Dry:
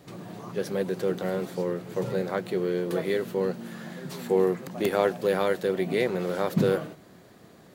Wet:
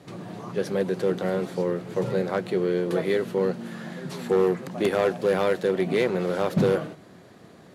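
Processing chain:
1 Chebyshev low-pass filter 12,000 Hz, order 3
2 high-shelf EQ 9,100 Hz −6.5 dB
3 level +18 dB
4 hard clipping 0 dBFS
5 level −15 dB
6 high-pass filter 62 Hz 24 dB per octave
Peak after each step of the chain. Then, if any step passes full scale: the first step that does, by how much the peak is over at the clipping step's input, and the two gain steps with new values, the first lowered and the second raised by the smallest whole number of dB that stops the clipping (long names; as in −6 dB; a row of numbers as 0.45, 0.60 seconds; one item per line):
−8.5, −8.5, +9.5, 0.0, −15.0, −11.0 dBFS
step 3, 9.5 dB
step 3 +8 dB, step 5 −5 dB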